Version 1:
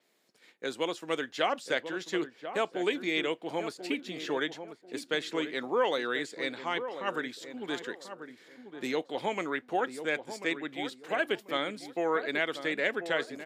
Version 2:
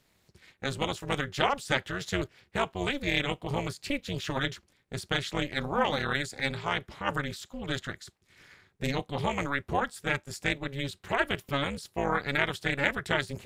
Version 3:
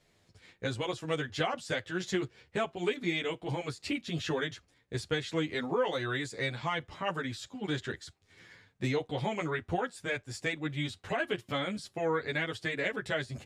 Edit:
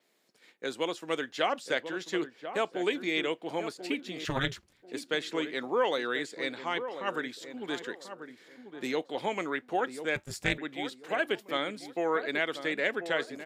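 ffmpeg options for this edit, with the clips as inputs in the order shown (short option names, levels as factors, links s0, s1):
-filter_complex "[1:a]asplit=2[s0][s1];[0:a]asplit=3[s2][s3][s4];[s2]atrim=end=4.252[s5];[s0]atrim=start=4.248:end=4.822[s6];[s3]atrim=start=4.818:end=10.162[s7];[s1]atrim=start=10.158:end=10.582[s8];[s4]atrim=start=10.578[s9];[s5][s6]acrossfade=d=0.004:c1=hsin:c2=hsin[s10];[s10][s7]acrossfade=d=0.004:c1=hsin:c2=hsin[s11];[s11][s8]acrossfade=d=0.004:c1=hsin:c2=hsin[s12];[s12][s9]acrossfade=d=0.004:c1=hsin:c2=hsin"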